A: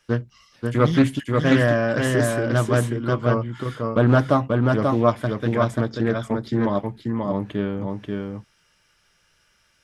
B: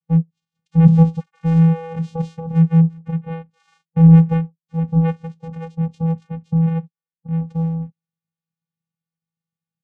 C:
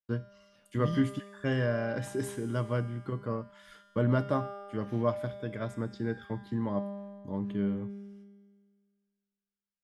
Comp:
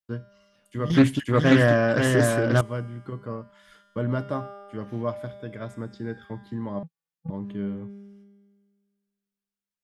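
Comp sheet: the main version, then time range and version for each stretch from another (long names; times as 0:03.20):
C
0:00.90–0:02.61: punch in from A
0:06.83–0:07.30: punch in from B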